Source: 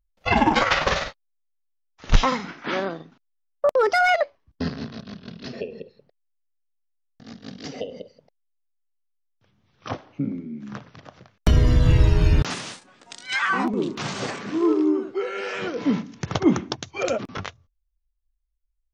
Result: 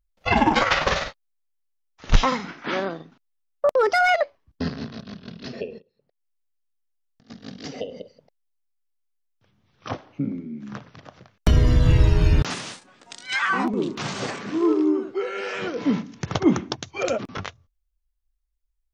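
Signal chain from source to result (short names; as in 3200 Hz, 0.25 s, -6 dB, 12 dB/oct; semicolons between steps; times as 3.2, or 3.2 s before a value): 5.78–7.3 compressor 4:1, threshold -59 dBFS, peak gain reduction 22 dB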